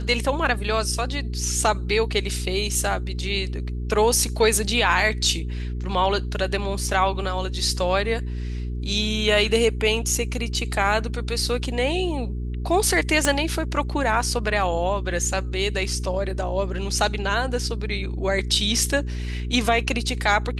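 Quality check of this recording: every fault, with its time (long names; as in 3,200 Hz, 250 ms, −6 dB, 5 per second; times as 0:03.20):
mains hum 60 Hz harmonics 7 −28 dBFS
0:13.25: click −6 dBFS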